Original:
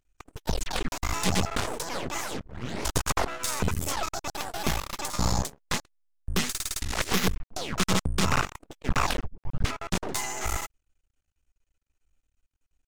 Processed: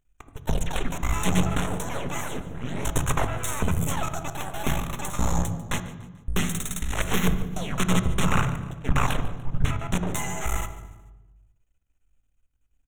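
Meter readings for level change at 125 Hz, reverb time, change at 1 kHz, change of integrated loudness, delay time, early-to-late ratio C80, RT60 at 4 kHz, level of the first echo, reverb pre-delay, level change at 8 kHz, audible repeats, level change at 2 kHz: +5.5 dB, 1.1 s, +0.5 dB, +1.5 dB, 146 ms, 11.5 dB, 0.85 s, −16.5 dB, 3 ms, −1.0 dB, 3, +0.5 dB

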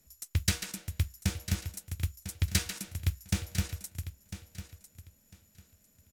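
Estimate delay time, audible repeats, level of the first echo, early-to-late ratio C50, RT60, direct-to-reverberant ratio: 1,000 ms, 2, −12.5 dB, no reverb audible, no reverb audible, no reverb audible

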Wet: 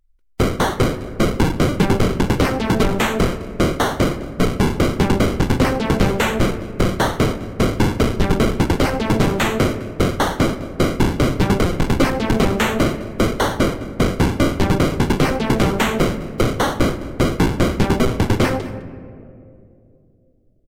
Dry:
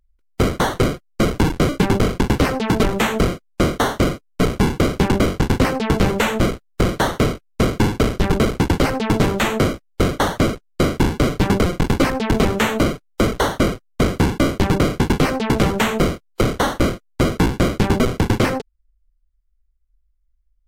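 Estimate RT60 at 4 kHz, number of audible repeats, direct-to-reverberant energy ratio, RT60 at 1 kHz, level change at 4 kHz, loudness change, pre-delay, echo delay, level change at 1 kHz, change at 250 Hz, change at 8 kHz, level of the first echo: 1.0 s, 1, 10.5 dB, 2.2 s, 0.0 dB, +0.5 dB, 3 ms, 208 ms, +0.5 dB, +0.5 dB, 0.0 dB, −19.0 dB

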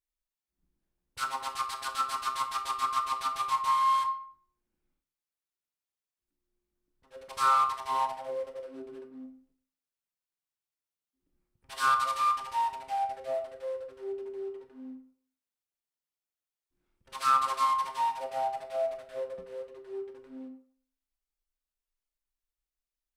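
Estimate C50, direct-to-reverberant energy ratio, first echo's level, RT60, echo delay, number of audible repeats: 11.0 dB, 7.0 dB, no echo audible, 0.55 s, no echo audible, no echo audible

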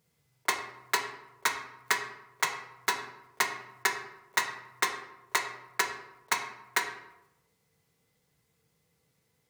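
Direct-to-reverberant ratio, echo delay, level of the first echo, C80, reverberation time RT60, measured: 2.5 dB, no echo audible, no echo audible, 10.0 dB, 0.90 s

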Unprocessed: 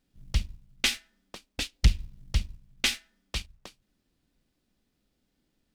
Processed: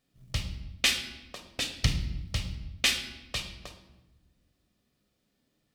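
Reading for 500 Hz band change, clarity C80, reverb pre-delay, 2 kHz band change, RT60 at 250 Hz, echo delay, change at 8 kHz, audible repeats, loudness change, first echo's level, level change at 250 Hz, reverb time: +2.5 dB, 11.0 dB, 7 ms, +2.0 dB, 1.8 s, no echo audible, +1.5 dB, no echo audible, 0.0 dB, no echo audible, +0.5 dB, 1.0 s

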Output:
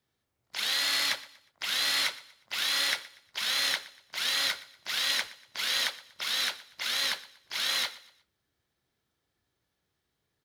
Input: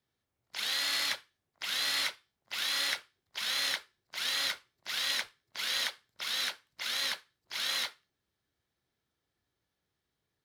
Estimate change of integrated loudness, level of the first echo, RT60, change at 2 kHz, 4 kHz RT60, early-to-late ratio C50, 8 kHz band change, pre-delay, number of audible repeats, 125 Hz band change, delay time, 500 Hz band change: +3.5 dB, −19.0 dB, no reverb audible, +3.5 dB, no reverb audible, no reverb audible, +3.5 dB, no reverb audible, 2, can't be measured, 120 ms, +3.5 dB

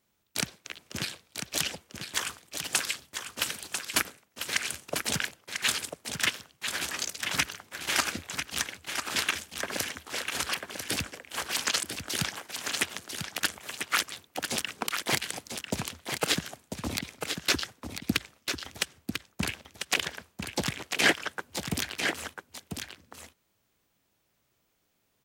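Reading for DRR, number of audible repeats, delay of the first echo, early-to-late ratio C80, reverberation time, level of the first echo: no reverb audible, 1, 995 ms, no reverb audible, no reverb audible, −6.5 dB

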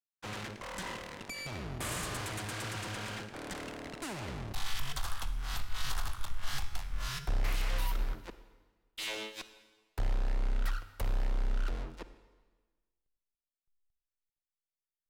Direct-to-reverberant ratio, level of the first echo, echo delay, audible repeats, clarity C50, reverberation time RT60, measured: 11.5 dB, no echo audible, no echo audible, no echo audible, 12.0 dB, 1.3 s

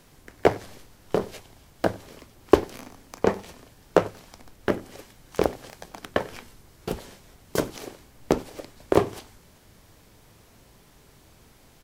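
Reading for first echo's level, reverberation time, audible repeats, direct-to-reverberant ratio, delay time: −23.5 dB, no reverb audible, 1, no reverb audible, 95 ms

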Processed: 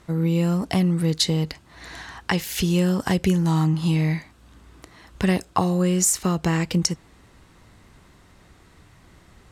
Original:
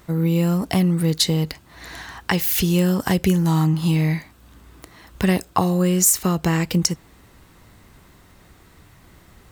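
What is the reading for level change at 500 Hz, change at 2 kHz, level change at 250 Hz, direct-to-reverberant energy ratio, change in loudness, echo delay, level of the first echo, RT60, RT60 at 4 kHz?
−2.0 dB, −2.0 dB, −2.0 dB, no reverb audible, −2.5 dB, no echo audible, no echo audible, no reverb audible, no reverb audible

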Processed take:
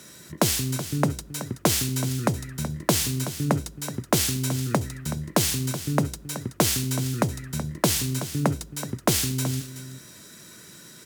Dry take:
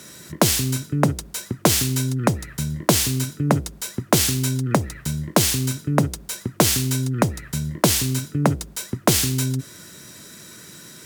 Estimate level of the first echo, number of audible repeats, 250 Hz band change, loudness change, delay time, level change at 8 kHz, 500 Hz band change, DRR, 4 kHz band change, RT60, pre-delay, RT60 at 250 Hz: −12.5 dB, 1, −4.0 dB, −4.5 dB, 376 ms, −4.0 dB, −4.5 dB, no reverb audible, −4.5 dB, no reverb audible, no reverb audible, no reverb audible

